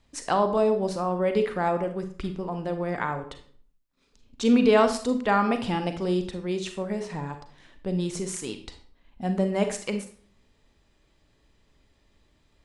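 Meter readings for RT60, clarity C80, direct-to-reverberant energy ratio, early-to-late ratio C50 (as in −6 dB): 0.45 s, 13.5 dB, 7.0 dB, 9.5 dB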